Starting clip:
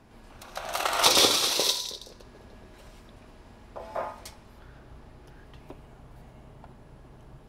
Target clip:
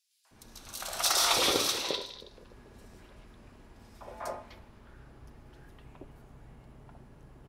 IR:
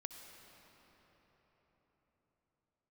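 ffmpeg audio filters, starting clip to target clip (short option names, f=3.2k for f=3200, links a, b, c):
-filter_complex "[0:a]aeval=exprs='0.562*(cos(1*acos(clip(val(0)/0.562,-1,1)))-cos(1*PI/2))+0.0891*(cos(5*acos(clip(val(0)/0.562,-1,1)))-cos(5*PI/2))+0.0398*(cos(7*acos(clip(val(0)/0.562,-1,1)))-cos(7*PI/2))':c=same,acrossover=split=750|3800[a][b][c];[b]adelay=250[d];[a]adelay=310[e];[e][d][c]amix=inputs=3:normalize=0,volume=-5dB"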